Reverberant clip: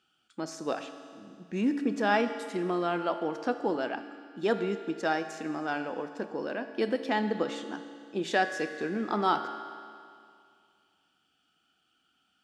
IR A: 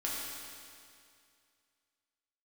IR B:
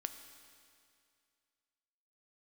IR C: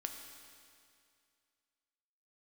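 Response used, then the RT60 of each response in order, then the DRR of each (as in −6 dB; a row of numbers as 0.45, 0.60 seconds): B; 2.3, 2.3, 2.3 seconds; −6.0, 7.5, 3.5 decibels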